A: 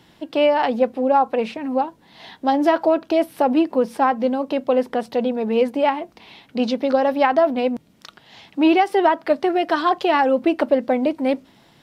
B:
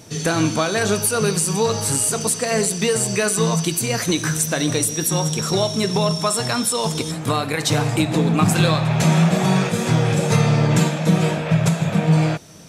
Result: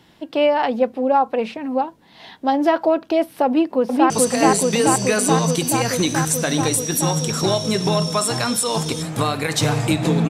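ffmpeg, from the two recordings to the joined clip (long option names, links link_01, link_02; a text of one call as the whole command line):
ffmpeg -i cue0.wav -i cue1.wav -filter_complex "[0:a]apad=whole_dur=10.29,atrim=end=10.29,atrim=end=4.102[link_01];[1:a]atrim=start=2.188:end=8.38[link_02];[link_01][link_02]acrossfade=duration=0.004:curve1=hsin:curve2=hsin,asplit=2[link_03][link_04];[link_04]afade=type=in:start_time=3.46:duration=0.01,afade=type=out:start_time=4.1:duration=0.01,aecho=0:1:430|860|1290|1720|2150|2580|3010|3440|3870|4300|4730|5160:0.944061|0.755249|0.604199|0.483359|0.386687|0.30935|0.24748|0.197984|0.158387|0.12671|0.101368|0.0810942[link_05];[link_03][link_05]amix=inputs=2:normalize=0" out.wav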